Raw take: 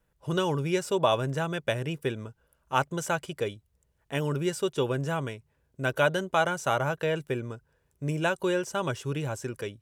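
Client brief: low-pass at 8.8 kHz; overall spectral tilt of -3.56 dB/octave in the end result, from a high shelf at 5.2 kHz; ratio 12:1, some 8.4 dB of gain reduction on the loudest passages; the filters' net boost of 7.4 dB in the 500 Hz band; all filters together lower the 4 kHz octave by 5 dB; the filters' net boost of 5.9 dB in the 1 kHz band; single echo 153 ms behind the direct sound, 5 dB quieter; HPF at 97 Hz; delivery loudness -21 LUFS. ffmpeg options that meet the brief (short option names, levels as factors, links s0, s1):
-af "highpass=97,lowpass=8800,equalizer=f=500:t=o:g=8,equalizer=f=1000:t=o:g=5.5,equalizer=f=4000:t=o:g=-4.5,highshelf=f=5200:g=-8.5,acompressor=threshold=0.1:ratio=12,aecho=1:1:153:0.562,volume=2"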